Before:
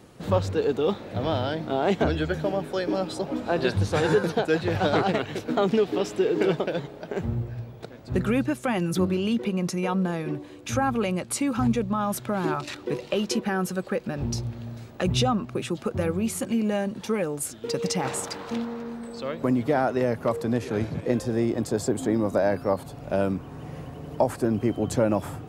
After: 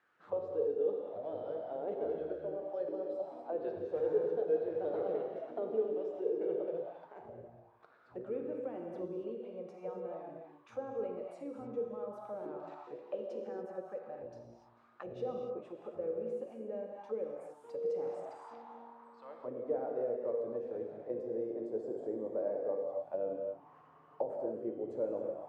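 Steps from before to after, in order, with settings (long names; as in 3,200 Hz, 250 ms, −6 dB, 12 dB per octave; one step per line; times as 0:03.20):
reverb whose tail is shaped and stops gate 310 ms flat, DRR 0.5 dB
envelope filter 480–1,600 Hz, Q 4.2, down, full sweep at −19.5 dBFS
level −8.5 dB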